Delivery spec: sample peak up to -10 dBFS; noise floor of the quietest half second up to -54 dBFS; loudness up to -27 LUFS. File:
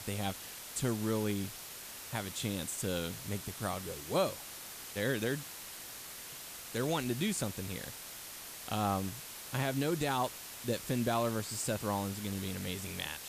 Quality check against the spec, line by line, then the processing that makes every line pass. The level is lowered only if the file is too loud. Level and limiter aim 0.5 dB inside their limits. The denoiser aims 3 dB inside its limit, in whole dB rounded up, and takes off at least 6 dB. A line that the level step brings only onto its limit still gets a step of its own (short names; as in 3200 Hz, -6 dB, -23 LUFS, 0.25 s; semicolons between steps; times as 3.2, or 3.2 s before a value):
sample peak -19.5 dBFS: OK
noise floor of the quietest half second -47 dBFS: fail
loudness -36.5 LUFS: OK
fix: denoiser 10 dB, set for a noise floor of -47 dBFS